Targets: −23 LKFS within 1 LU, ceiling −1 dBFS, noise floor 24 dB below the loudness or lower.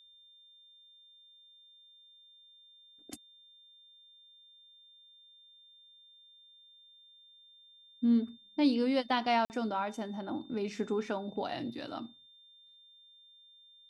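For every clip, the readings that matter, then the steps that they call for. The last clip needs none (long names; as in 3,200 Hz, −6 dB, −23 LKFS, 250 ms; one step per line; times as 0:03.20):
number of dropouts 1; longest dropout 49 ms; interfering tone 3,600 Hz; level of the tone −57 dBFS; integrated loudness −33.0 LKFS; sample peak −16.5 dBFS; target loudness −23.0 LKFS
→ repair the gap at 0:09.45, 49 ms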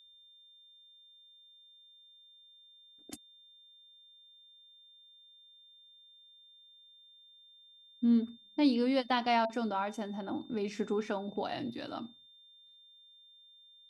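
number of dropouts 0; interfering tone 3,600 Hz; level of the tone −57 dBFS
→ notch filter 3,600 Hz, Q 30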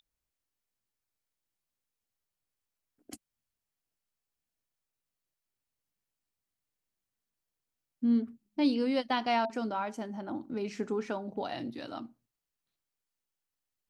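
interfering tone none found; integrated loudness −33.0 LKFS; sample peak −16.5 dBFS; target loudness −23.0 LKFS
→ level +10 dB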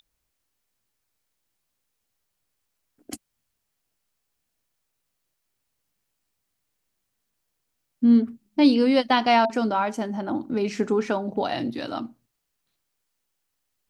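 integrated loudness −23.0 LKFS; sample peak −6.5 dBFS; background noise floor −79 dBFS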